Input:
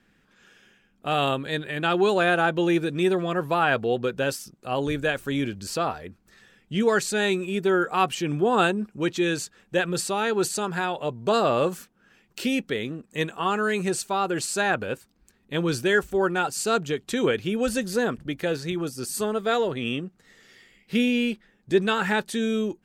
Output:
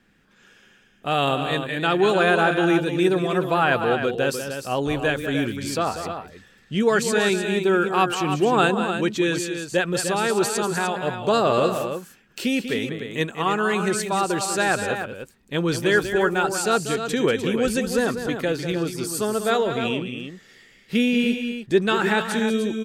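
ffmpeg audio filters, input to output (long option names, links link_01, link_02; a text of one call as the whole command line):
ffmpeg -i in.wav -af "aecho=1:1:192|301:0.335|0.376,volume=2dB" out.wav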